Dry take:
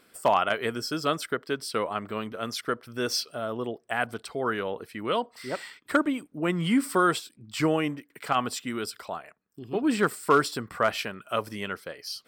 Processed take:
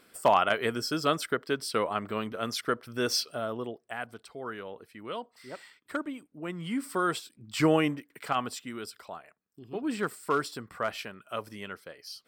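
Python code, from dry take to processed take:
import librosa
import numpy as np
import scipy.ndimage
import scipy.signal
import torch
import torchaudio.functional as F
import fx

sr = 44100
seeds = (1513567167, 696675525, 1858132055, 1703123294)

y = fx.gain(x, sr, db=fx.line((3.36, 0.0), (4.06, -10.0), (6.63, -10.0), (7.76, 2.0), (8.7, -7.0)))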